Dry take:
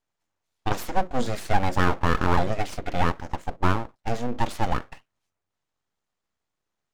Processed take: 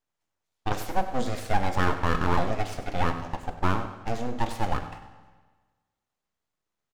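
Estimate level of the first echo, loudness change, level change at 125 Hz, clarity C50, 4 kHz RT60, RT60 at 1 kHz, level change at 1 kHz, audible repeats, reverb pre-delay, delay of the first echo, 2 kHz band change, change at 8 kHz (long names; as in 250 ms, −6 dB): −13.5 dB, −2.5 dB, −2.5 dB, 9.0 dB, 1.3 s, 1.4 s, −2.0 dB, 1, 11 ms, 97 ms, −2.5 dB, −2.5 dB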